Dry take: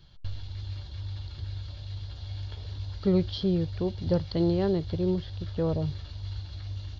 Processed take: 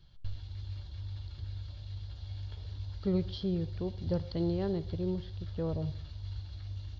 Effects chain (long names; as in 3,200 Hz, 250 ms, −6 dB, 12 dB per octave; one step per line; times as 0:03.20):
low-shelf EQ 100 Hz +6 dB
on a send: convolution reverb RT60 0.55 s, pre-delay 63 ms, DRR 17 dB
on the sum: level −7.5 dB